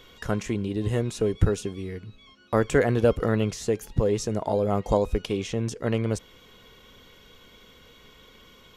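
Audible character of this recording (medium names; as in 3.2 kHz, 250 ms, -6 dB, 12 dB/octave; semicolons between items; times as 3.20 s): noise floor -54 dBFS; spectral tilt -6.5 dB/octave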